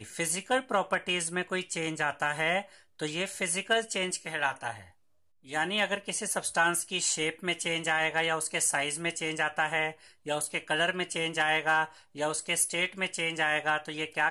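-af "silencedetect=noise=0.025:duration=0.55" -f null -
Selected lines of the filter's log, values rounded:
silence_start: 4.72
silence_end: 5.52 | silence_duration: 0.80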